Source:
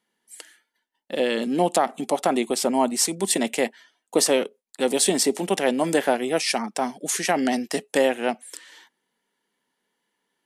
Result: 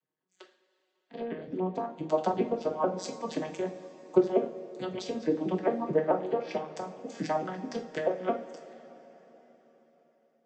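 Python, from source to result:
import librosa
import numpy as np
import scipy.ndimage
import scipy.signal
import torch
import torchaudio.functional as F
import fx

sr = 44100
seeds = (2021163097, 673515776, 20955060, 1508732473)

y = fx.vocoder_arp(x, sr, chord='minor triad', root=51, every_ms=218)
y = fx.env_lowpass_down(y, sr, base_hz=1700.0, full_db=-18.0)
y = fx.hpss(y, sr, part='harmonic', gain_db=-16)
y = fx.rev_double_slope(y, sr, seeds[0], early_s=0.41, late_s=4.4, knee_db=-18, drr_db=2.5)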